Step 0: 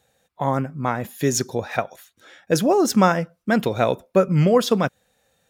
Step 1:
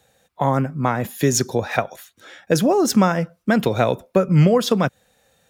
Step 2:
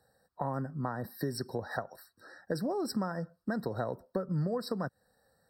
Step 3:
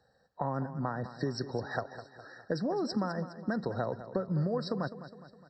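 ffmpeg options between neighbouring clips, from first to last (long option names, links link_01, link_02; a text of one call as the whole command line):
ffmpeg -i in.wav -filter_complex "[0:a]acrossover=split=150[link_01][link_02];[link_02]acompressor=threshold=-20dB:ratio=3[link_03];[link_01][link_03]amix=inputs=2:normalize=0,volume=5dB" out.wav
ffmpeg -i in.wav -af "acompressor=threshold=-25dB:ratio=2.5,afftfilt=real='re*eq(mod(floor(b*sr/1024/1900),2),0)':imag='im*eq(mod(floor(b*sr/1024/1900),2),0)':win_size=1024:overlap=0.75,volume=-8.5dB" out.wav
ffmpeg -i in.wav -af "aresample=16000,aresample=44100,aecho=1:1:206|412|618|824|1030:0.224|0.114|0.0582|0.0297|0.0151,volume=1dB" out.wav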